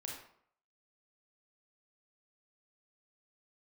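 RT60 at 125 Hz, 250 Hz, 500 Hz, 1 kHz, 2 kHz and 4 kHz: 0.55, 0.60, 0.60, 0.65, 0.50, 0.40 seconds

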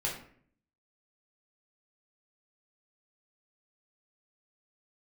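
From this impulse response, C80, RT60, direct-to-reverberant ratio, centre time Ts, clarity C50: 9.5 dB, 0.55 s, −5.0 dB, 32 ms, 5.5 dB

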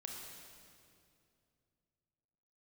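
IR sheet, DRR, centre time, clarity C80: −0.5 dB, 97 ms, 2.5 dB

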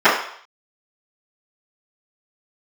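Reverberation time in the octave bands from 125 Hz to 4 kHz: 0.30, 0.45, 0.60, 0.65, 0.60, 0.65 seconds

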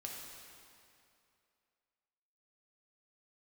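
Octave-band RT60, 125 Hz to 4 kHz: 2.4, 2.5, 2.6, 2.6, 2.4, 2.2 seconds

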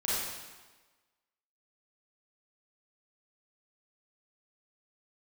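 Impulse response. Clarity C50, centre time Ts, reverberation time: −4.0 dB, 106 ms, 1.3 s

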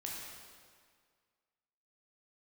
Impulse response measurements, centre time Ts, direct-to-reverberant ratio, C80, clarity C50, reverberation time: 104 ms, −3.5 dB, 1.0 dB, −0.5 dB, 1.9 s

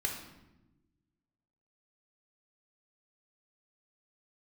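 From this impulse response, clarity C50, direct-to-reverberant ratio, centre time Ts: 5.0 dB, 1.0 dB, 33 ms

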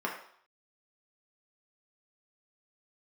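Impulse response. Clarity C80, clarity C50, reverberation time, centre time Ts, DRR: 9.5 dB, 6.0 dB, 0.60 s, 28 ms, −2.0 dB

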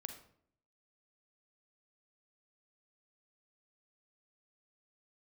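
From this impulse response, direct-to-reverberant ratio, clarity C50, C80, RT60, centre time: 6.0 dB, 8.0 dB, 11.5 dB, 0.65 s, 16 ms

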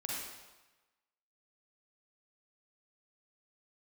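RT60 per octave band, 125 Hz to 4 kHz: 1.1, 1.0, 1.1, 1.2, 1.1, 1.0 seconds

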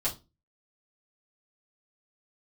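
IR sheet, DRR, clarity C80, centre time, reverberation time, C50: −8.5 dB, 22.5 dB, 15 ms, 0.25 s, 14.5 dB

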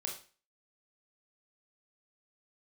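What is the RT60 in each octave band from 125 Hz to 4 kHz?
0.40, 0.40, 0.35, 0.35, 0.40, 0.35 seconds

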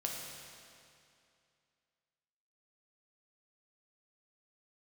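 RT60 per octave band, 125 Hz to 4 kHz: 2.5, 2.5, 2.5, 2.5, 2.4, 2.3 seconds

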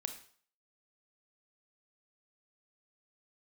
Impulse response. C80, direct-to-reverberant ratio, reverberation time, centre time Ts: 13.0 dB, 7.0 dB, 0.50 s, 13 ms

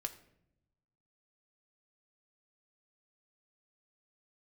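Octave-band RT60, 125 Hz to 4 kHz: 1.5, 1.3, 0.90, 0.65, 0.60, 0.50 seconds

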